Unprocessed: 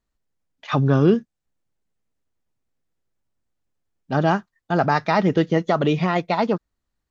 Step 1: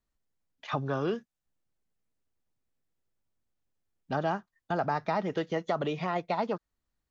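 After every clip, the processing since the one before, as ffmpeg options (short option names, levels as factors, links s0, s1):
-filter_complex "[0:a]acrossover=split=520|1100[s0][s1][s2];[s0]acompressor=threshold=0.0282:ratio=4[s3];[s1]acompressor=threshold=0.0631:ratio=4[s4];[s2]acompressor=threshold=0.0158:ratio=4[s5];[s3][s4][s5]amix=inputs=3:normalize=0,volume=0.596"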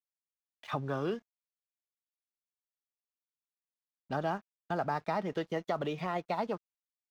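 -af "aeval=exprs='sgn(val(0))*max(abs(val(0))-0.00168,0)':c=same,volume=0.708"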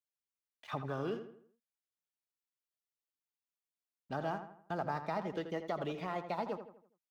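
-filter_complex "[0:a]asplit=2[s0][s1];[s1]adelay=82,lowpass=f=2700:p=1,volume=0.355,asplit=2[s2][s3];[s3]adelay=82,lowpass=f=2700:p=1,volume=0.43,asplit=2[s4][s5];[s5]adelay=82,lowpass=f=2700:p=1,volume=0.43,asplit=2[s6][s7];[s7]adelay=82,lowpass=f=2700:p=1,volume=0.43,asplit=2[s8][s9];[s9]adelay=82,lowpass=f=2700:p=1,volume=0.43[s10];[s0][s2][s4][s6][s8][s10]amix=inputs=6:normalize=0,volume=0.596"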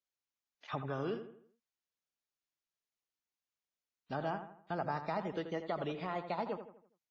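-ar 16000 -c:a wmav2 -b:a 32k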